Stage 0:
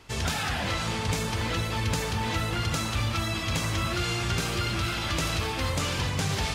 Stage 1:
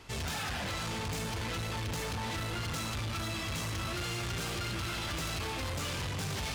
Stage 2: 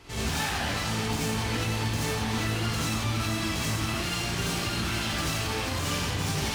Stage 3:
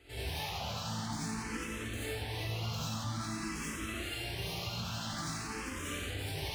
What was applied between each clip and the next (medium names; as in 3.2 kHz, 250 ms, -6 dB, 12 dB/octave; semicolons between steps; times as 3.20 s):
saturation -33.5 dBFS, distortion -8 dB
gated-style reverb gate 110 ms rising, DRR -5.5 dB
barber-pole phaser +0.49 Hz; trim -6.5 dB